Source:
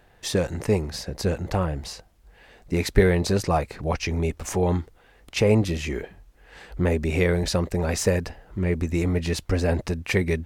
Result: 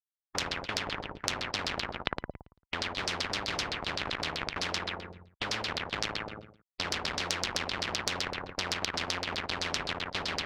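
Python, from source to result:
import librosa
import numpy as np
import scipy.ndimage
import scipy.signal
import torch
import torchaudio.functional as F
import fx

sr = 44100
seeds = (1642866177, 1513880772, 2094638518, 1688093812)

p1 = fx.dead_time(x, sr, dead_ms=0.22)
p2 = fx.low_shelf(p1, sr, hz=140.0, db=-3.0)
p3 = p2 + fx.echo_feedback(p2, sr, ms=511, feedback_pct=25, wet_db=-8.5, dry=0)
p4 = fx.schmitt(p3, sr, flips_db=-21.5)
p5 = fx.room_flutter(p4, sr, wall_m=9.6, rt60_s=0.6)
p6 = fx.sample_hold(p5, sr, seeds[0], rate_hz=1000.0, jitter_pct=0)
p7 = p5 + (p6 * 10.0 ** (-6.0 / 20.0))
p8 = scipy.signal.sosfilt(scipy.signal.butter(2, 63.0, 'highpass', fs=sr, output='sos'), p7)
p9 = fx.high_shelf(p8, sr, hz=4400.0, db=-8.0)
p10 = fx.filter_lfo_lowpass(p9, sr, shape='saw_down', hz=7.8, low_hz=530.0, high_hz=4800.0, q=4.7)
p11 = fx.spectral_comp(p10, sr, ratio=10.0)
y = p11 * 10.0 ** (3.0 / 20.0)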